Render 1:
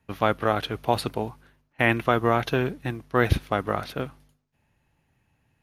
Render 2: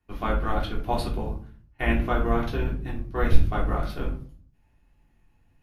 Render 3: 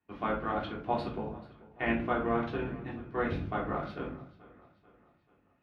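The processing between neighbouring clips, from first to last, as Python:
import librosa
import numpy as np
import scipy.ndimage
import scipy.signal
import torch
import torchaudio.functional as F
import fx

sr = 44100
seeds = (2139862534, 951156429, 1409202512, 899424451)

y1 = fx.octave_divider(x, sr, octaves=2, level_db=4.0)
y1 = fx.room_shoebox(y1, sr, seeds[0], volume_m3=280.0, walls='furnished', distance_m=3.3)
y1 = fx.rider(y1, sr, range_db=10, speed_s=2.0)
y1 = F.gain(torch.from_numpy(y1), -12.5).numpy()
y2 = fx.bandpass_edges(y1, sr, low_hz=140.0, high_hz=2900.0)
y2 = fx.echo_feedback(y2, sr, ms=438, feedback_pct=48, wet_db=-20)
y2 = F.gain(torch.from_numpy(y2), -3.5).numpy()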